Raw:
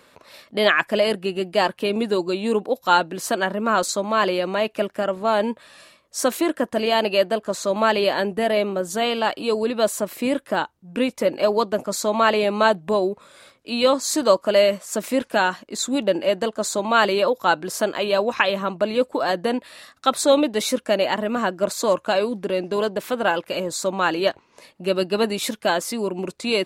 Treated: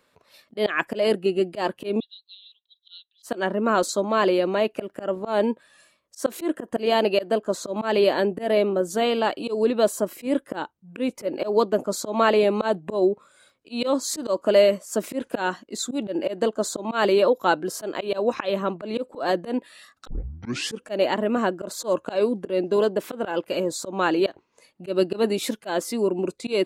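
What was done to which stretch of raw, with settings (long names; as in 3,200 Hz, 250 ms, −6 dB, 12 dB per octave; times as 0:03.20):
0:02.00–0:03.23: flat-topped band-pass 3,600 Hz, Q 5.2
0:20.07: tape start 0.77 s
whole clip: noise reduction from a noise print of the clip's start 8 dB; dynamic equaliser 350 Hz, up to +8 dB, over −34 dBFS, Q 0.87; volume swells 132 ms; level −4 dB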